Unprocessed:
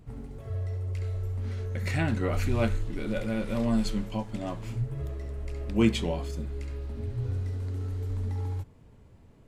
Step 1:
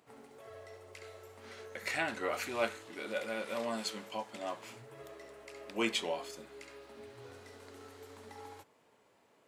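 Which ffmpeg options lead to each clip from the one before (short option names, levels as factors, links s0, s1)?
-af "highpass=570"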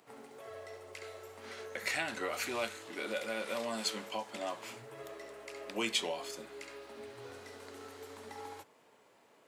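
-filter_complex "[0:a]lowshelf=f=140:g=-8.5,acrossover=split=160|3000[s0][s1][s2];[s1]acompressor=threshold=0.0126:ratio=6[s3];[s0][s3][s2]amix=inputs=3:normalize=0,volume=1.58"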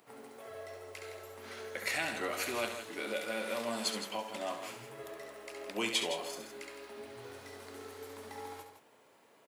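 -filter_complex "[0:a]asplit=2[s0][s1];[s1]aecho=0:1:68|163:0.355|0.335[s2];[s0][s2]amix=inputs=2:normalize=0,aexciter=amount=1.8:drive=3.4:freq=10000"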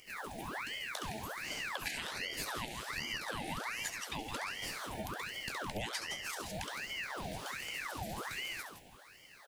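-af "asuperstop=centerf=1100:order=8:qfactor=0.86,acompressor=threshold=0.00562:ratio=12,aeval=exprs='val(0)*sin(2*PI*1400*n/s+1400*0.85/1.3*sin(2*PI*1.3*n/s))':c=same,volume=3.76"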